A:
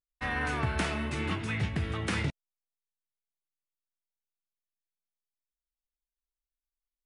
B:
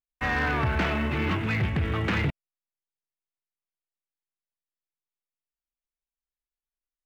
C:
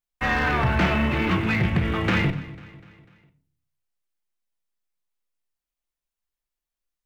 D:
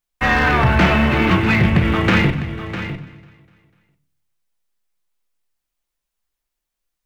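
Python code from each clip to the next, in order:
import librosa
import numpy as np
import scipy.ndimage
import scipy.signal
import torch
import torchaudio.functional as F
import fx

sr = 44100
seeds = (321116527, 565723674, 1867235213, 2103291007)

y1 = scipy.signal.sosfilt(scipy.signal.butter(4, 3100.0, 'lowpass', fs=sr, output='sos'), x)
y1 = fx.leveller(y1, sr, passes=2)
y2 = fx.echo_feedback(y1, sr, ms=248, feedback_pct=52, wet_db=-19.5)
y2 = fx.room_shoebox(y2, sr, seeds[0], volume_m3=380.0, walls='furnished', distance_m=0.88)
y2 = y2 * 10.0 ** (3.5 / 20.0)
y3 = y2 + 10.0 ** (-12.0 / 20.0) * np.pad(y2, (int(653 * sr / 1000.0), 0))[:len(y2)]
y3 = y3 * 10.0 ** (7.0 / 20.0)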